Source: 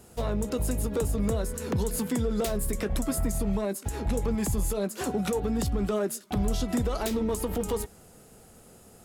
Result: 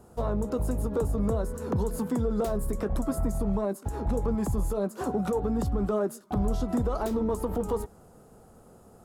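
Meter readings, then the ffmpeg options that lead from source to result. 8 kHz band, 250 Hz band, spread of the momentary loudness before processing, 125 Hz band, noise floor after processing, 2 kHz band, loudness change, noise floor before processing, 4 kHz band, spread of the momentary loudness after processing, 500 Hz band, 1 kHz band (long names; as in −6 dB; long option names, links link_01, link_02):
−9.5 dB, 0.0 dB, 3 LU, 0.0 dB, −55 dBFS, −6.0 dB, 0.0 dB, −54 dBFS, −11.0 dB, 3 LU, +0.5 dB, +1.5 dB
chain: -af "highshelf=frequency=1600:width_type=q:width=1.5:gain=-9.5"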